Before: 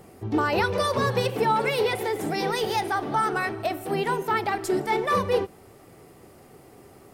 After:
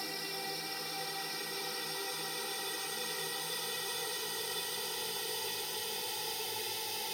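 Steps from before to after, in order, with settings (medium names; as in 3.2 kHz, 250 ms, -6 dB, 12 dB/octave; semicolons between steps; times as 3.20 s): pre-emphasis filter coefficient 0.9; Paulstretch 22×, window 0.50 s, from 2.39 s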